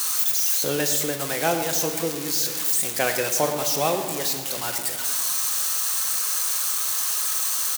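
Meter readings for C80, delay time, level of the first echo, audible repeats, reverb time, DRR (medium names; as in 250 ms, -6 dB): 8.0 dB, 109 ms, -13.5 dB, 1, 2.0 s, 5.0 dB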